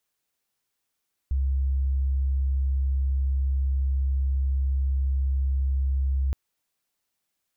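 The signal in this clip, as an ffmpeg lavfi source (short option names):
-f lavfi -i "sine=f=67.2:d=5.02:r=44100,volume=-2.94dB"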